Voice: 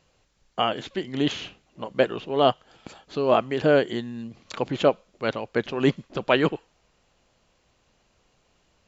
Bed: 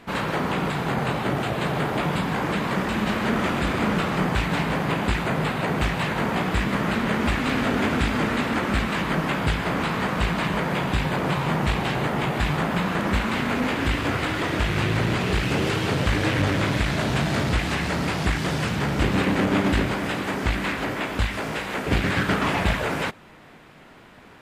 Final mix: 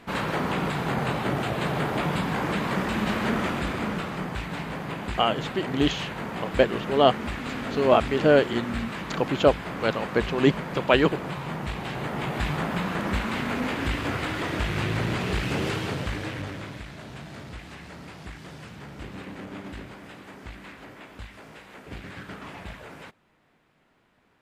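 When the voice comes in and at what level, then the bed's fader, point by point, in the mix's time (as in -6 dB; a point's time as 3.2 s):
4.60 s, +1.0 dB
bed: 3.27 s -2 dB
4.27 s -9 dB
11.73 s -9 dB
12.4 s -4 dB
15.7 s -4 dB
16.91 s -17.5 dB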